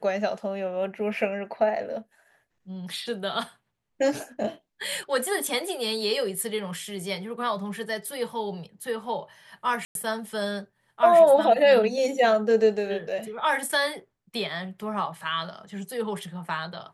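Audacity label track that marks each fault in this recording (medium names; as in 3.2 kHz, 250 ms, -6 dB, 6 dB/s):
9.850000	9.950000	dropout 102 ms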